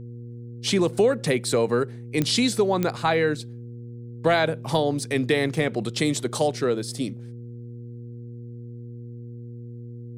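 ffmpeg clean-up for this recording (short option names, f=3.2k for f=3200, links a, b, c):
-af "adeclick=t=4,bandreject=f=119.1:t=h:w=4,bandreject=f=238.2:t=h:w=4,bandreject=f=357.3:t=h:w=4,bandreject=f=476.4:t=h:w=4"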